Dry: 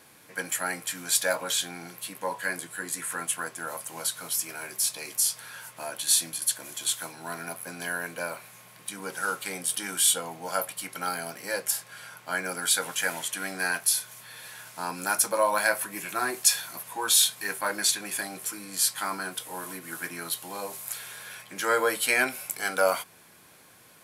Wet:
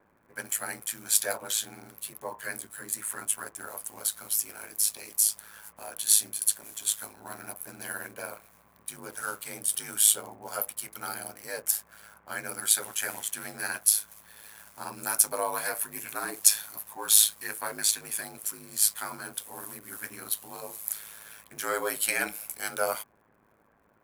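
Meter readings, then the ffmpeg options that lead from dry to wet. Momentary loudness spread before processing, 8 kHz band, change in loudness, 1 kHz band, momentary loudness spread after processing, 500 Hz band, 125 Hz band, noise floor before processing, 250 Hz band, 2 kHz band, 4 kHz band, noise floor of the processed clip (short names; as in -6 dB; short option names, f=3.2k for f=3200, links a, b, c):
14 LU, +1.0 dB, 0.0 dB, -6.0 dB, 18 LU, -6.5 dB, -5.0 dB, -55 dBFS, -6.5 dB, -6.5 dB, -4.0 dB, -65 dBFS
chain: -filter_complex "[0:a]acrossover=split=570|1700[a][b][c];[c]aeval=exprs='sgn(val(0))*max(abs(val(0))-0.00335,0)':c=same[d];[a][b][d]amix=inputs=3:normalize=0,highshelf=f=7.7k:g=11.5,aeval=exprs='val(0)*sin(2*PI*53*n/s)':c=same,aeval=exprs='1.06*(cos(1*acos(clip(val(0)/1.06,-1,1)))-cos(1*PI/2))+0.0266*(cos(7*acos(clip(val(0)/1.06,-1,1)))-cos(7*PI/2))':c=same,volume=-1.5dB"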